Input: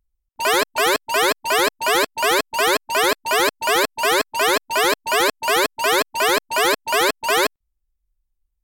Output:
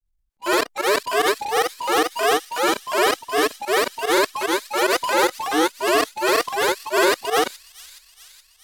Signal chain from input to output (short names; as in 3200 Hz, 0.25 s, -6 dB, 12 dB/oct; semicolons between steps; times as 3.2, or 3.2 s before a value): grains 0.1 s, grains 20/s, spray 35 ms, pitch spread up and down by 3 st; in parallel at +2 dB: level quantiser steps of 20 dB; on the sum: harmonic-percussive split percussive -11 dB; transient shaper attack -6 dB, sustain +5 dB; pump 148 bpm, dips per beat 1, -16 dB, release 75 ms; on a send: thin delay 0.421 s, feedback 62%, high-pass 4300 Hz, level -13 dB